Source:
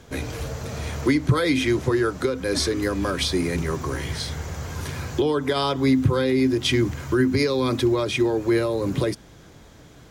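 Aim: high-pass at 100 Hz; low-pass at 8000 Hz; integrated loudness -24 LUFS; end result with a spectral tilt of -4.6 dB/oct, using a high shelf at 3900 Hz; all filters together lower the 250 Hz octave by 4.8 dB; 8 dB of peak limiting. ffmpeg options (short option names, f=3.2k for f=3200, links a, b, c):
-af "highpass=100,lowpass=8k,equalizer=f=250:t=o:g=-6.5,highshelf=f=3.9k:g=4,volume=3.5dB,alimiter=limit=-14dB:level=0:latency=1"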